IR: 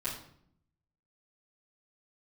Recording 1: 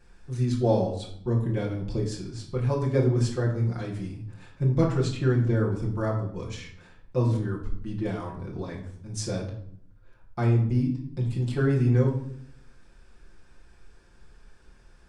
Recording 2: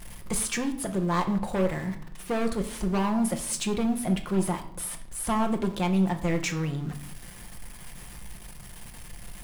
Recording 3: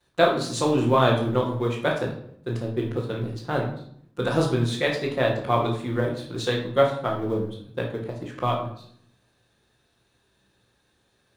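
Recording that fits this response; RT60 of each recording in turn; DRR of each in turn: 3; 0.65, 0.65, 0.65 s; -4.5, 4.5, -13.0 dB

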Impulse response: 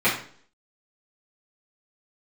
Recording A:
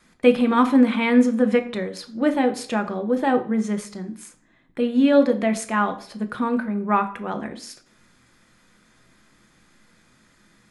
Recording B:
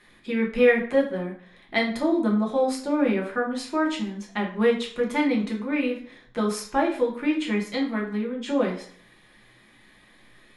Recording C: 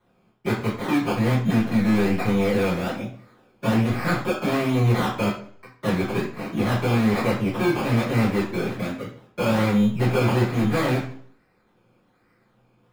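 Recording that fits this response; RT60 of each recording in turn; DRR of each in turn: C; 0.50, 0.50, 0.50 s; 6.5, -2.0, -11.5 dB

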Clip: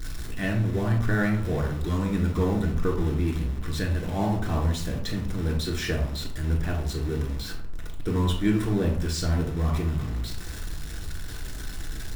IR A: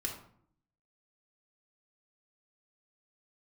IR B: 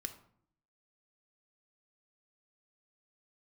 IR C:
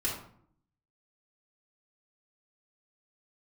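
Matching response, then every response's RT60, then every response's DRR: A; 0.60, 0.60, 0.60 s; -1.0, 6.5, -6.5 dB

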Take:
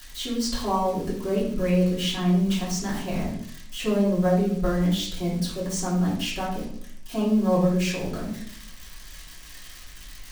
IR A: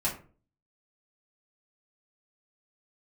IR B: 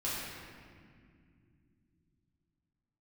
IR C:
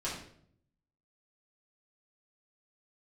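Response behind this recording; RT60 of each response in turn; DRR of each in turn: C; 0.40 s, not exponential, 0.60 s; -7.0, -9.0, -8.5 dB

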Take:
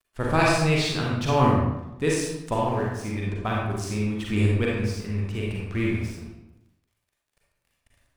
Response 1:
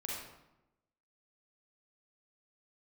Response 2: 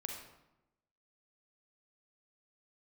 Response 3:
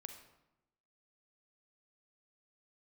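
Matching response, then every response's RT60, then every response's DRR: 1; 0.95, 0.95, 0.95 s; -4.0, 1.5, 6.0 dB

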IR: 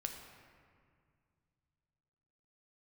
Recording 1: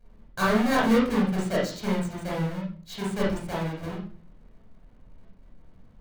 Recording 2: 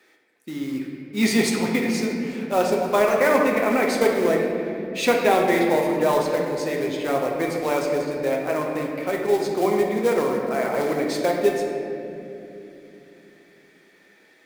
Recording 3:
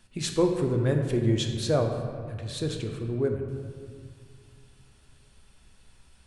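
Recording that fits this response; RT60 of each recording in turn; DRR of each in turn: 3; 0.45, 2.9, 2.1 s; -6.0, -1.0, 3.0 dB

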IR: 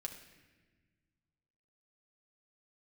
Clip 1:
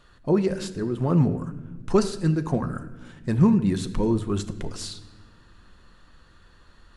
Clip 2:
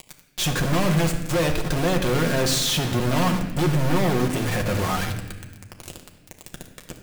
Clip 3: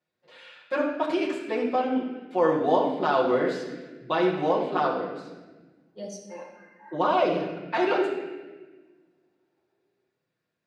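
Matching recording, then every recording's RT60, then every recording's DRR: 2; not exponential, not exponential, not exponential; 8.0, 2.5, -6.0 dB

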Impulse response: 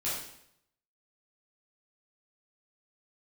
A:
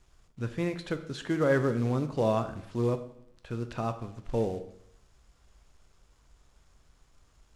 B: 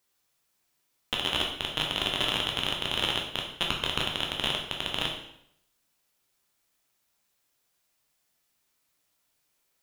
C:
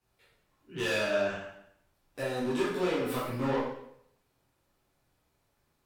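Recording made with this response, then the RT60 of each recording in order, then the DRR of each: C; 0.70, 0.70, 0.70 s; 8.5, -0.5, -9.5 dB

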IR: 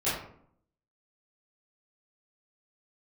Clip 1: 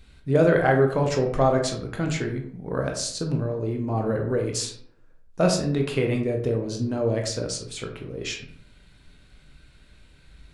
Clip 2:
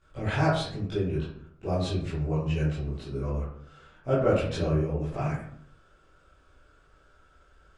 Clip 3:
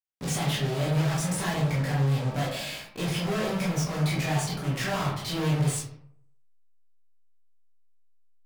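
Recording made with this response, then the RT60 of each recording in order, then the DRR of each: 2; 0.65, 0.65, 0.65 s; 2.0, -13.5, -5.5 dB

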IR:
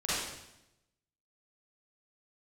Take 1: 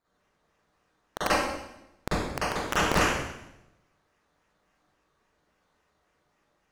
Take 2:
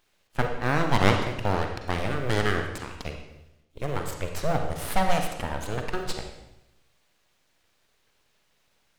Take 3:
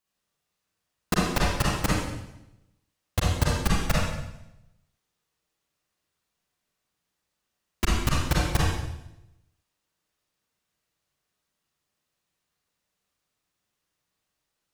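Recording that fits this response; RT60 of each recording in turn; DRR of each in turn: 1; 0.85, 0.85, 0.85 s; -11.5, 4.0, -5.5 dB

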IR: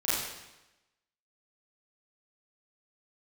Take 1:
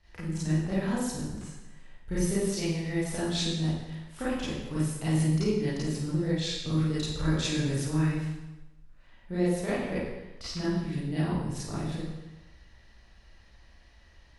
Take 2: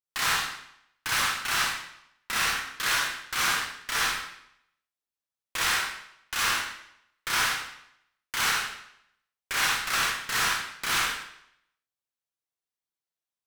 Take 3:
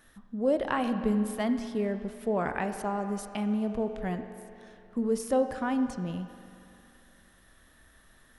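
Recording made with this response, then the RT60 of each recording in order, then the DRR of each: 1; 1.0, 0.75, 2.7 s; -11.0, -5.5, 8.0 dB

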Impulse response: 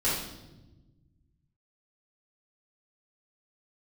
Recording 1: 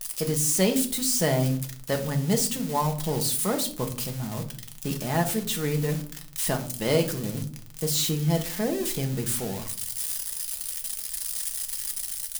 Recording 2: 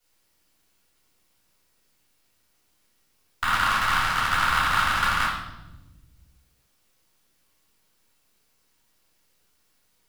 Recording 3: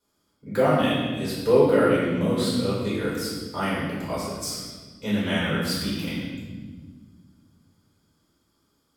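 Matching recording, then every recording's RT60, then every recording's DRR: 2; 0.50 s, not exponential, 1.5 s; 3.5, -11.0, -10.0 dB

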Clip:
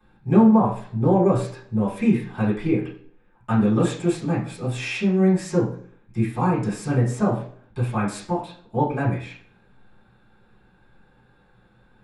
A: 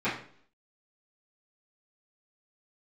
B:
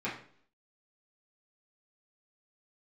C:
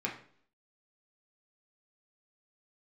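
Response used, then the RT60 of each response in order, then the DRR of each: A; 0.55, 0.55, 0.55 s; -15.0, -9.5, -2.5 dB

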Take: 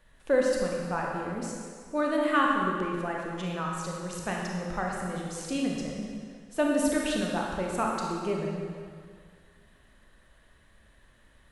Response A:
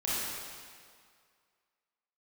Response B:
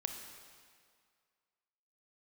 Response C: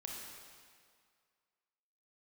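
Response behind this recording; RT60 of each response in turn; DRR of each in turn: C; 2.0, 2.0, 2.0 s; -9.0, 4.5, -2.0 dB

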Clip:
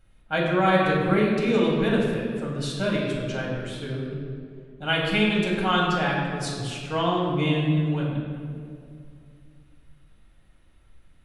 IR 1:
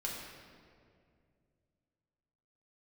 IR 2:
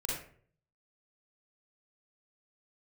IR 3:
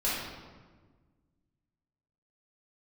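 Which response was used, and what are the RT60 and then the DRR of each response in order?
1; 2.3, 0.50, 1.4 s; -4.5, -5.5, -10.0 dB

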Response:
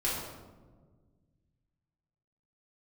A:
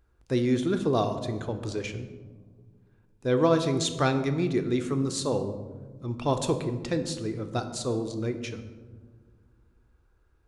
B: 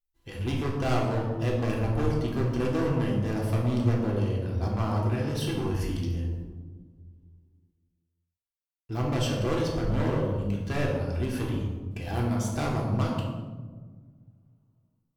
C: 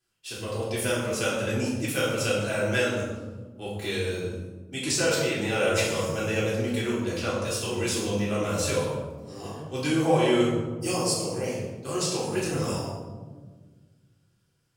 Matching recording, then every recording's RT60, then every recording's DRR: C; not exponential, 1.5 s, 1.5 s; 7.0, -3.0, -8.0 dB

